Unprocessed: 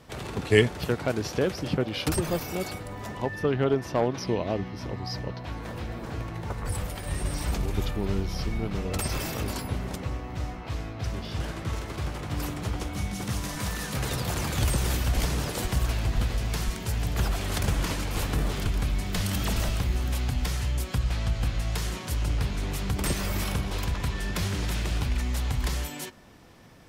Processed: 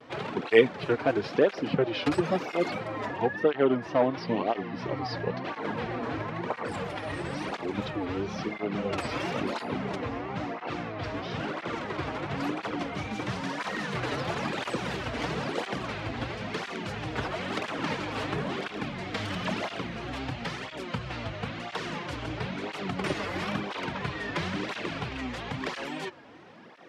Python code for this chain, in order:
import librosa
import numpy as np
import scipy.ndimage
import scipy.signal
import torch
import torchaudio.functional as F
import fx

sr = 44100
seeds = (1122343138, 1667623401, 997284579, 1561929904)

p1 = fx.rider(x, sr, range_db=10, speed_s=0.5)
p2 = x + (p1 * librosa.db_to_amplitude(0.0))
p3 = fx.wow_flutter(p2, sr, seeds[0], rate_hz=2.1, depth_cents=120.0)
p4 = fx.bandpass_edges(p3, sr, low_hz=220.0, high_hz=3000.0)
y = fx.flanger_cancel(p4, sr, hz=0.99, depth_ms=5.9)